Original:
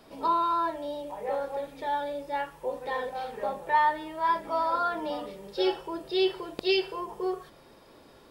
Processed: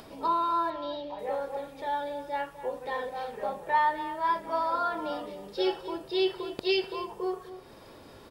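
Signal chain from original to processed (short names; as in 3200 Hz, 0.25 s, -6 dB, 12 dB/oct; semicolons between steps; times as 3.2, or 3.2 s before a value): bell 97 Hz +6.5 dB 0.6 oct; upward compressor, threshold -41 dBFS; 0.7–1.19 resonant high shelf 6100 Hz -14 dB, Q 3; outdoor echo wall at 43 m, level -13 dB; gain -1.5 dB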